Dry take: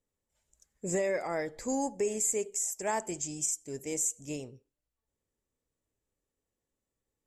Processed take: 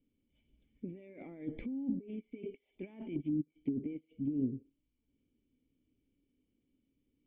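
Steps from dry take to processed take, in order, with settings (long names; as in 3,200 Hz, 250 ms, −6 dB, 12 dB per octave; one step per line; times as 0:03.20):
compressor whose output falls as the input rises −42 dBFS, ratio −1
formant resonators in series i
treble cut that deepens with the level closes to 460 Hz, closed at −41.5 dBFS
level +11 dB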